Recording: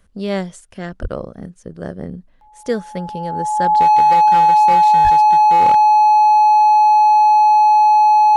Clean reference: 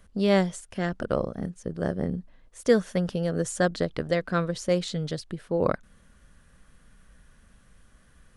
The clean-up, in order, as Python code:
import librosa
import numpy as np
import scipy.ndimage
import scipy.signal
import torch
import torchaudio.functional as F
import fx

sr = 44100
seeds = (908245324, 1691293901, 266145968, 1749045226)

y = fx.fix_declip(x, sr, threshold_db=-8.0)
y = fx.notch(y, sr, hz=850.0, q=30.0)
y = fx.highpass(y, sr, hz=140.0, slope=24, at=(1.01, 1.13), fade=0.02)
y = fx.highpass(y, sr, hz=140.0, slope=24, at=(5.03, 5.15), fade=0.02)